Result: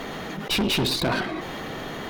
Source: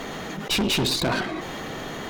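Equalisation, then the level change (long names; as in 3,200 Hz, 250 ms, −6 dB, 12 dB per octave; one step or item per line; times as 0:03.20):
parametric band 7,000 Hz −5.5 dB 0.61 octaves
0.0 dB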